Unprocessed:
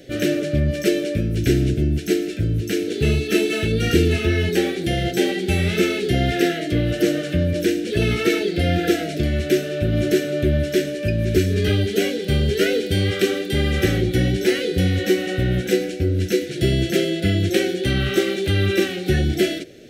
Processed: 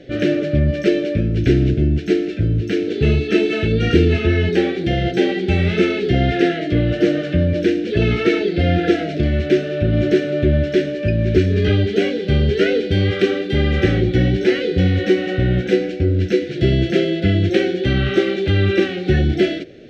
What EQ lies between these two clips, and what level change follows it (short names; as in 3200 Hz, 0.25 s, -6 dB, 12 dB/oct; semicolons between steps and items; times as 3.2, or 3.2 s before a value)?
air absorption 200 m; +3.5 dB